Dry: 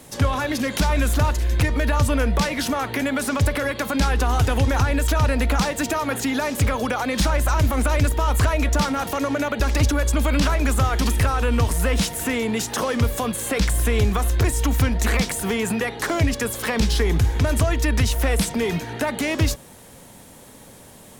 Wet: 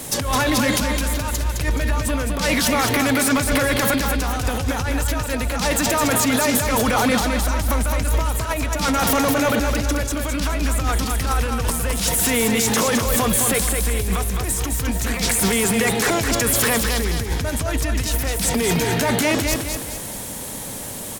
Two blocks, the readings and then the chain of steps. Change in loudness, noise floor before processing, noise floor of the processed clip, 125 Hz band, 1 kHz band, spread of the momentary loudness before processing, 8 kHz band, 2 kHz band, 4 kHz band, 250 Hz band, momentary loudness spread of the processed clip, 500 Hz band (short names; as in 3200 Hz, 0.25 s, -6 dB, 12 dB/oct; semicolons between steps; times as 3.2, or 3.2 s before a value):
+1.5 dB, -45 dBFS, -31 dBFS, -3.0 dB, +2.0 dB, 4 LU, +7.5 dB, +3.0 dB, +4.5 dB, +2.0 dB, 6 LU, +2.0 dB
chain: high shelf 4600 Hz +7.5 dB; negative-ratio compressor -25 dBFS, ratio -1; soft clip -18 dBFS, distortion -17 dB; on a send: feedback echo 0.212 s, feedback 42%, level -5 dB; on the sum: gain +5 dB